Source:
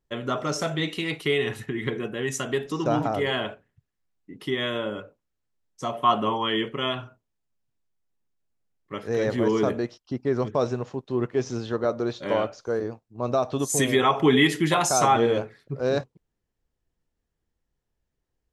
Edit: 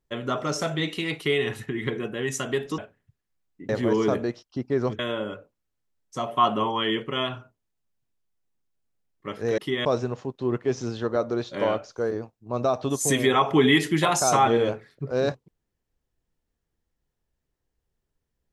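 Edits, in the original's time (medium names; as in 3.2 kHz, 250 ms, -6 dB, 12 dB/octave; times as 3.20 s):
2.78–3.47 s: delete
4.38–4.65 s: swap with 9.24–10.54 s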